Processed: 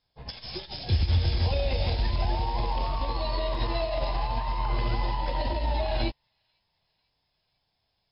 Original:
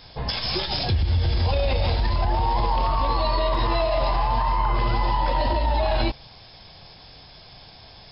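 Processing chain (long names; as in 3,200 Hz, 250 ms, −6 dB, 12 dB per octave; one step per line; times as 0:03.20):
loose part that buzzes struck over −27 dBFS, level −35 dBFS
dynamic equaliser 1,200 Hz, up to −6 dB, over −40 dBFS, Q 1.7
on a send: delay with a high-pass on its return 495 ms, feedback 65%, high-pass 2,000 Hz, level −10 dB
on the sum: expander for the loud parts 2.5 to 1, over −39 dBFS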